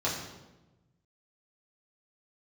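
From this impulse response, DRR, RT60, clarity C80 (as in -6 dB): -7.5 dB, 1.1 s, 6.0 dB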